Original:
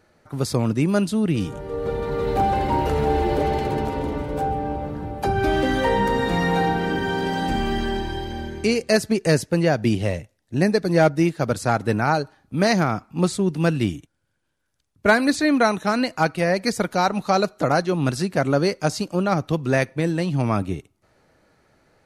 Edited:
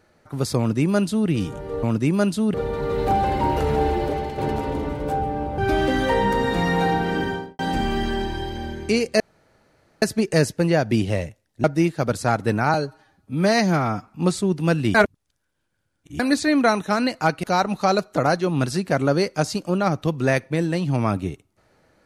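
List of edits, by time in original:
0.58–1.29 copy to 1.83
3.11–3.67 fade out, to -8 dB
4.87–5.33 cut
6.97–7.34 studio fade out
8.95 insert room tone 0.82 s
10.57–11.05 cut
12.15–13.04 stretch 1.5×
13.91–15.16 reverse
16.4–16.89 cut

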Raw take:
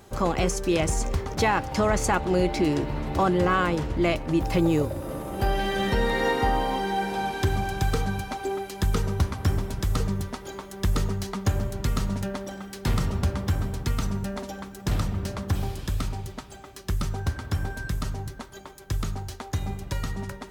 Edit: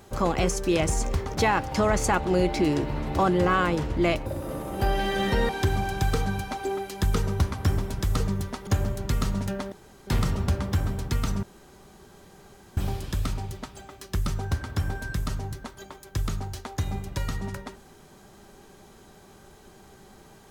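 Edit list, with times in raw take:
4.26–4.86 cut
6.09–7.29 cut
10.47–11.42 cut
12.47–12.82 room tone
14.18–15.52 room tone

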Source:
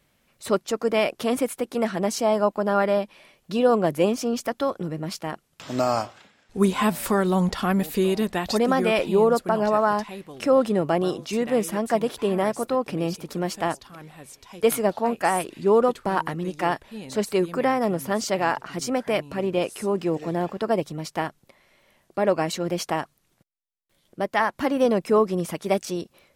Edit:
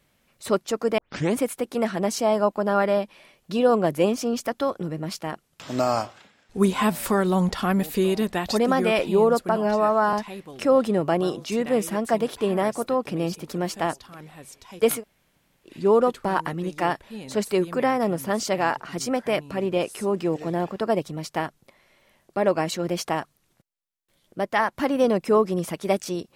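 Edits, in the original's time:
0.98 tape start 0.38 s
9.56–9.94 stretch 1.5×
14.8–15.5 room tone, crossfade 0.10 s

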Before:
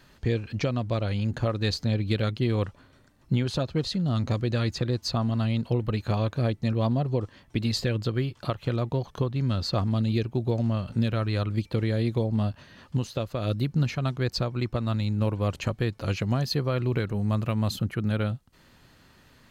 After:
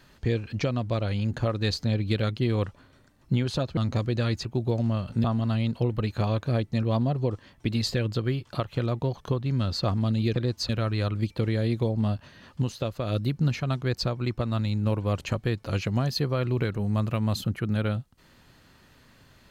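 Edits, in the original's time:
3.77–4.12 cut
4.8–5.14 swap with 10.25–11.04

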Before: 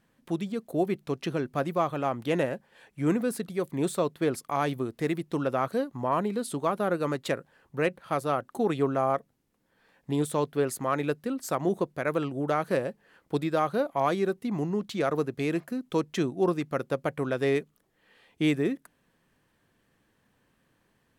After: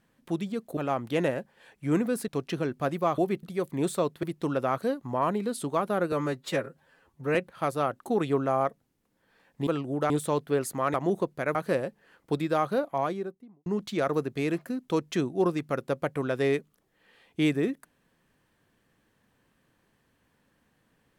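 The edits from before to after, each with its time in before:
0.77–1.02 swap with 1.92–3.43
4.23–5.13 cut
7.02–7.84 stretch 1.5×
11–11.53 cut
12.14–12.57 move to 10.16
13.75–14.68 studio fade out

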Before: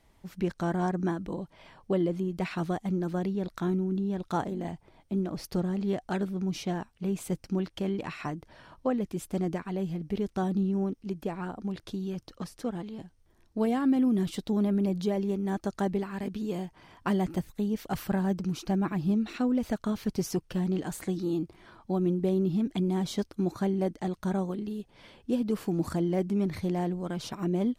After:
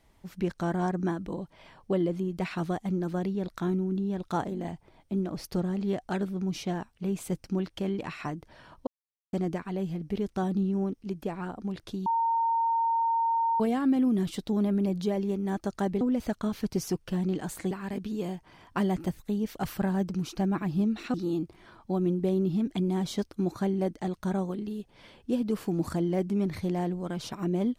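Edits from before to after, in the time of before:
8.87–9.33 mute
12.06–13.6 bleep 917 Hz -23 dBFS
19.44–21.14 move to 16.01

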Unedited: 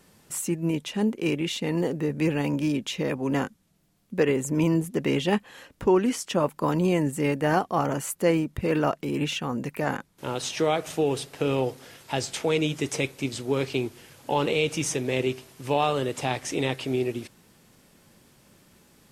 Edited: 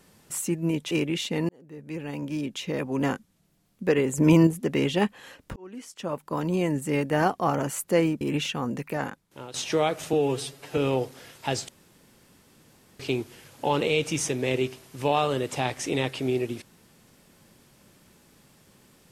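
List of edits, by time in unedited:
0.91–1.22 cut
1.8–3.36 fade in
4.49–4.78 gain +5.5 dB
5.87–7.78 fade in equal-power
8.52–9.08 cut
9.59–10.41 fade out, to -13.5 dB
11–11.43 stretch 1.5×
12.34–13.65 room tone

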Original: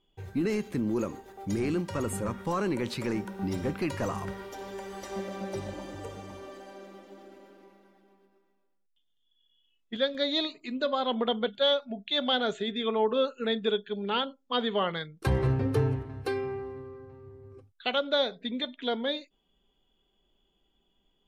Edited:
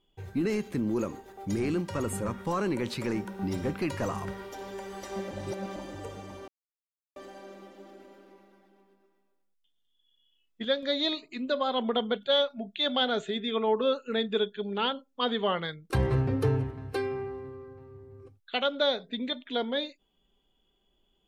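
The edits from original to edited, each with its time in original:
5.31–5.76 reverse
6.48 insert silence 0.68 s

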